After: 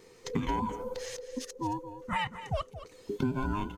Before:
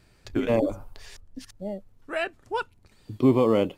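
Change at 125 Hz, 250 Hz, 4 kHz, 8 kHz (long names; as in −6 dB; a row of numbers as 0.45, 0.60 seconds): −4.0, −8.5, −1.5, +6.0 decibels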